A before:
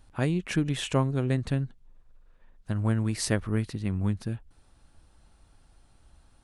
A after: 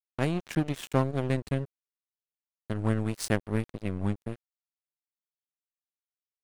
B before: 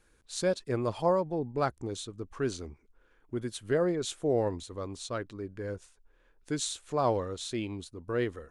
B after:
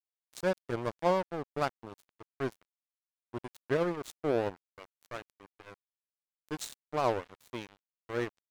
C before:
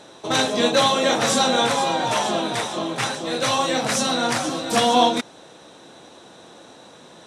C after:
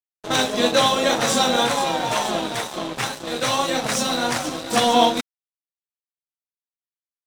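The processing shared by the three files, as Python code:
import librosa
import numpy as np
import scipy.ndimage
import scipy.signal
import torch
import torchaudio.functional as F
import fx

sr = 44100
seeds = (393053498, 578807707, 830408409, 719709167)

y = np.sign(x) * np.maximum(np.abs(x) - 10.0 ** (-32.0 / 20.0), 0.0)
y = fx.wow_flutter(y, sr, seeds[0], rate_hz=2.1, depth_cents=29.0)
y = y * 10.0 ** (1.5 / 20.0)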